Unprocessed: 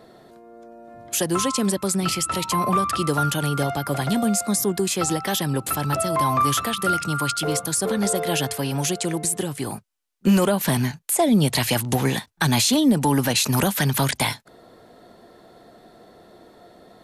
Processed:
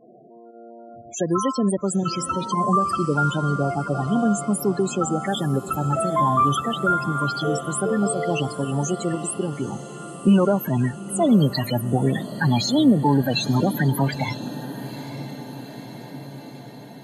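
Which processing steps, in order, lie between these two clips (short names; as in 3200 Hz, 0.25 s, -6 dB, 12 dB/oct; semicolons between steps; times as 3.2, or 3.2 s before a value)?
pump 118 bpm, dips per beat 1, -9 dB, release 78 ms; low-pass opened by the level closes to 2900 Hz, open at -18.5 dBFS; loudest bins only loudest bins 16; on a send: diffused feedback echo 0.909 s, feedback 65%, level -14 dB; on the sum: gain +1.5 dB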